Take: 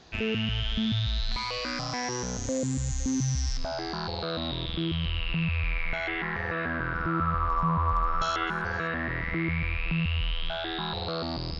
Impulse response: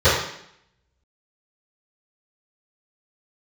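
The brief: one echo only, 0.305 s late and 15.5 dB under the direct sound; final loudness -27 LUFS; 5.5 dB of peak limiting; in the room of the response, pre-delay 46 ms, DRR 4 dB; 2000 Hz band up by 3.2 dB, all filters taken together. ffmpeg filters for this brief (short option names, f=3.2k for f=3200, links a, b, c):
-filter_complex "[0:a]equalizer=f=2k:t=o:g=4,alimiter=limit=-19dB:level=0:latency=1,aecho=1:1:305:0.168,asplit=2[a][b];[1:a]atrim=start_sample=2205,adelay=46[c];[b][c]afir=irnorm=-1:irlink=0,volume=-28dB[d];[a][d]amix=inputs=2:normalize=0,volume=-0.5dB"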